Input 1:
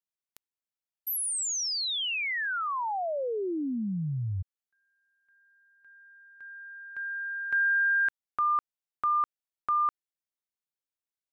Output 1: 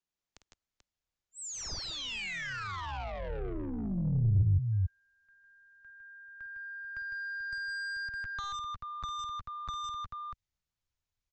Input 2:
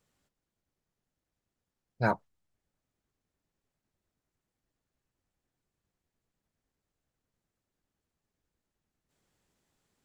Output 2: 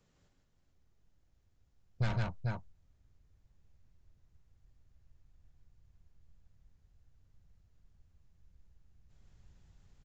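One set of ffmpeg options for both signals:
-filter_complex "[0:a]aecho=1:1:51|155|166|437:0.299|0.631|0.237|0.316,aresample=16000,asoftclip=type=tanh:threshold=-28.5dB,aresample=44100,lowshelf=f=340:g=7,acrossover=split=250|2000[a][b][c];[a]acompressor=threshold=-42dB:ratio=2[d];[b]acompressor=threshold=-47dB:ratio=2.5[e];[c]acompressor=threshold=-46dB:ratio=2.5[f];[d][e][f]amix=inputs=3:normalize=0,asubboost=boost=7.5:cutoff=100,volume=1.5dB"

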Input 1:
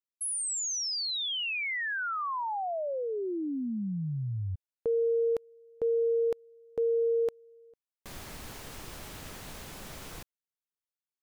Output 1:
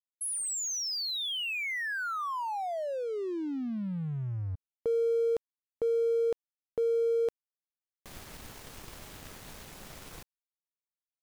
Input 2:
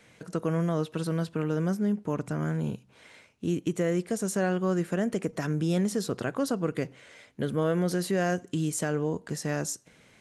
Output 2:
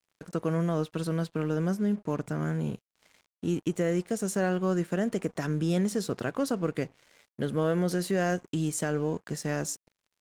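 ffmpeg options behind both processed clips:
-af "aeval=exprs='sgn(val(0))*max(abs(val(0))-0.00299,0)':c=same"

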